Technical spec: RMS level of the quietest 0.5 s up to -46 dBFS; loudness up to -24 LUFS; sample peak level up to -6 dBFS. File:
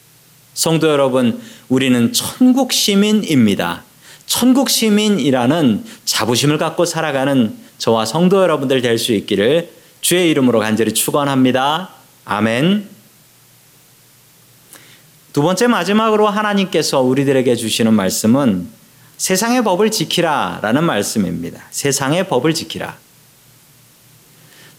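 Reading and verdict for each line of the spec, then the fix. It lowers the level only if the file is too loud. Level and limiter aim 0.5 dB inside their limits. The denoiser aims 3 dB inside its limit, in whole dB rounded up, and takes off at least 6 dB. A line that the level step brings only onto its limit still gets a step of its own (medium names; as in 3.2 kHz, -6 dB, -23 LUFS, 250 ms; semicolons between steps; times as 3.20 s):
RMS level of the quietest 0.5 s -48 dBFS: pass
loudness -15.0 LUFS: fail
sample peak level -3.5 dBFS: fail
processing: trim -9.5 dB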